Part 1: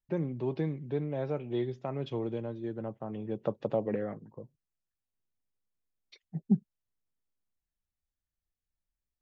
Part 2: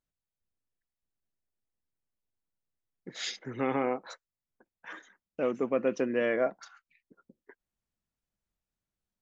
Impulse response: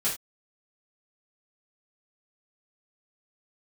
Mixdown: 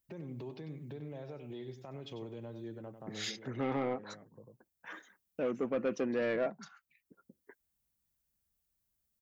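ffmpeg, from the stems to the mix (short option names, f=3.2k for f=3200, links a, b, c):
-filter_complex "[0:a]aemphasis=mode=production:type=75kf,acompressor=threshold=-32dB:ratio=6,alimiter=level_in=9dB:limit=-24dB:level=0:latency=1:release=171,volume=-9dB,volume=-3dB,asplit=2[a][b];[b]volume=-10dB[c];[1:a]lowshelf=f=120:g=9.5,volume=-3dB,asplit=2[d][e];[e]apad=whole_len=406310[f];[a][f]sidechaincompress=threshold=-36dB:ratio=8:attack=6.9:release=1190[g];[c]aecho=0:1:96:1[h];[g][d][h]amix=inputs=3:normalize=0,highpass=45,asoftclip=type=tanh:threshold=-25dB"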